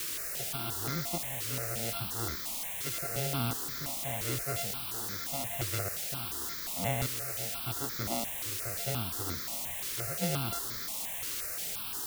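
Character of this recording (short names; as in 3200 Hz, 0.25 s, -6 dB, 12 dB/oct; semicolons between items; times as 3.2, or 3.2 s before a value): a buzz of ramps at a fixed pitch in blocks of 64 samples; tremolo saw up 0.85 Hz, depth 90%; a quantiser's noise floor 6-bit, dither triangular; notches that jump at a steady rate 5.7 Hz 200–2800 Hz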